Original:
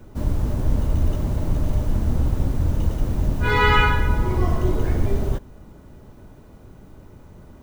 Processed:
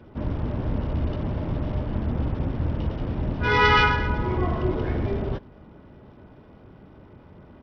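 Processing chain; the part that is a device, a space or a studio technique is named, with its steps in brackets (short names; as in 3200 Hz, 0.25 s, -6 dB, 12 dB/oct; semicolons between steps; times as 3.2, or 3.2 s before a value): Bluetooth headset (HPF 110 Hz 6 dB/oct; downsampling 8000 Hz; SBC 64 kbps 44100 Hz)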